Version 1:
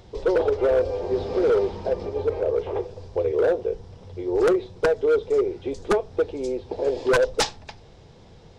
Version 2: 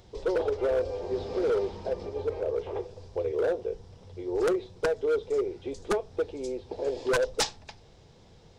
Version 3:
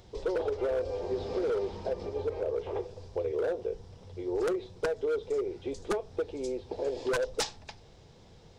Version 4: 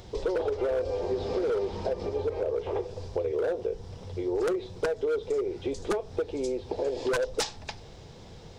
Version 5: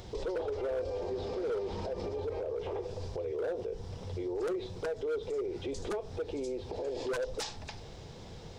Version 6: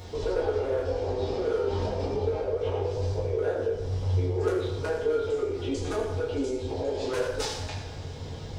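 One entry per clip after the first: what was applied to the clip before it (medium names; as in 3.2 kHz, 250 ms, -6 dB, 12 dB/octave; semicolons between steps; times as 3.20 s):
treble shelf 4.6 kHz +6.5 dB; trim -6.5 dB
compression, threshold -27 dBFS, peak gain reduction 5 dB
compression 2:1, threshold -38 dBFS, peak gain reduction 6.5 dB; trim +8 dB
peak limiter -29 dBFS, peak gain reduction 11 dB
reverberation RT60 1.1 s, pre-delay 5 ms, DRR -6 dB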